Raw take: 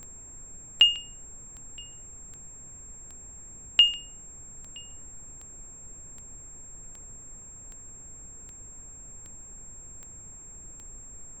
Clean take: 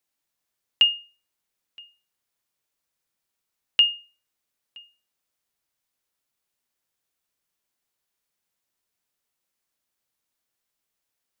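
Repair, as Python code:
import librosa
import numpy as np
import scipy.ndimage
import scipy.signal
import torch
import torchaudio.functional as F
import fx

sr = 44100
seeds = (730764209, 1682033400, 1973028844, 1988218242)

y = fx.fix_declick_ar(x, sr, threshold=10.0)
y = fx.notch(y, sr, hz=7500.0, q=30.0)
y = fx.noise_reduce(y, sr, print_start_s=10.05, print_end_s=10.55, reduce_db=30.0)
y = fx.fix_echo_inverse(y, sr, delay_ms=147, level_db=-18.5)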